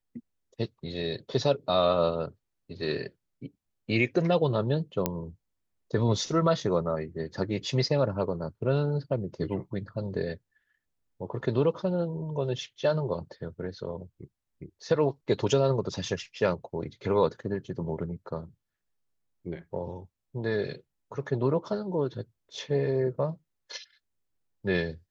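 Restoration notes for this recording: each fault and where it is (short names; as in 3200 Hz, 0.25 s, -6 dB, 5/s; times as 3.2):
5.06 pop -10 dBFS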